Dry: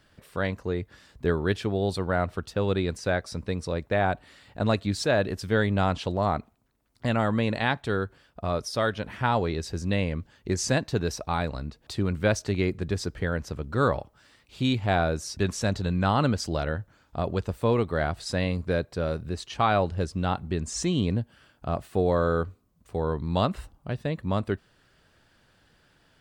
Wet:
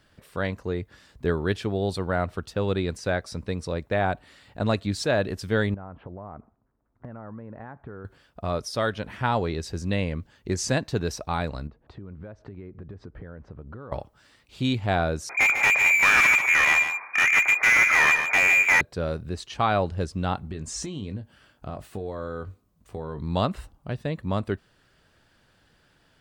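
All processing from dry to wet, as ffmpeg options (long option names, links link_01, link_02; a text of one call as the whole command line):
ffmpeg -i in.wav -filter_complex "[0:a]asettb=1/sr,asplit=3[link_01][link_02][link_03];[link_01]atrim=end=5.744[link_04];[link_02]atrim=start=5.74:end=8.05,asetpts=PTS-STARTPTS,afade=type=in:duration=0.004:curve=qsin,afade=type=out:start_time=2.306:duration=0.004:curve=qsin,lowpass=frequency=1500:width=0.5412,lowpass=frequency=1500:width=1.3066,acompressor=threshold=-35dB:ratio=12:attack=3.2:release=140:knee=1:detection=peak[link_05];[link_03]atrim=start=8.046[link_06];[link_04][link_05]acrossfade=duration=0.004:curve1=hsin:curve2=qsin[link_07];[link_07][link_06]acrossfade=duration=0.004:curve1=qsin:curve2=hsin,asettb=1/sr,asplit=3[link_08][link_09][link_10];[link_08]atrim=end=11.674[link_11];[link_09]atrim=start=11.67:end=13.92,asetpts=PTS-STARTPTS,afade=type=in:duration=0.004:curve=qsin,afade=type=out:start_time=2.246:duration=0.004:curve=qsin,lowpass=1300,acompressor=threshold=-36dB:ratio=16:attack=3.2:release=140:knee=1:detection=peak[link_12];[link_10]atrim=start=13.916[link_13];[link_11][link_12]acrossfade=duration=0.004:curve1=hsin:curve2=qsin[link_14];[link_14][link_13]acrossfade=duration=0.004:curve1=qsin:curve2=hsin,asettb=1/sr,asplit=3[link_15][link_16][link_17];[link_15]atrim=end=15.294[link_18];[link_16]atrim=start=15.29:end=18.81,asetpts=PTS-STARTPTS,afade=type=in:duration=0.004:curve=qsin,afade=type=out:start_time=3.516:duration=0.004:curve=qsin,lowpass=frequency=2100:width_type=q:width=0.5098,lowpass=frequency=2100:width_type=q:width=0.6013,lowpass=frequency=2100:width_type=q:width=0.9,lowpass=frequency=2100:width_type=q:width=2.563,afreqshift=-2500,asplit=2[link_19][link_20];[link_20]highpass=frequency=720:poles=1,volume=30dB,asoftclip=type=tanh:threshold=-9dB[link_21];[link_19][link_21]amix=inputs=2:normalize=0,lowpass=frequency=1900:poles=1,volume=-6dB,aecho=1:1:147:0.398,atrim=end_sample=155232[link_22];[link_17]atrim=start=18.806[link_23];[link_18][link_22]acrossfade=duration=0.004:curve1=hsin:curve2=qsin[link_24];[link_24][link_23]acrossfade=duration=0.004:curve1=qsin:curve2=hsin,asettb=1/sr,asplit=3[link_25][link_26][link_27];[link_25]atrim=end=20.514[link_28];[link_26]atrim=start=20.51:end=23.22,asetpts=PTS-STARTPTS,afade=type=in:duration=0.004:curve=qsin,afade=type=out:start_time=2.706:duration=0.004:curve=qsin,acompressor=threshold=-29dB:ratio=10:attack=3.2:release=140:knee=1:detection=peak,asplit=2[link_29][link_30];[link_30]adelay=20,volume=-9.5dB[link_31];[link_29][link_31]amix=inputs=2:normalize=0,atrim=end_sample=119511[link_32];[link_27]atrim=start=23.216[link_33];[link_28][link_32]acrossfade=duration=0.004:curve1=hsin:curve2=qsin[link_34];[link_34][link_33]acrossfade=duration=0.004:curve1=qsin:curve2=hsin" out.wav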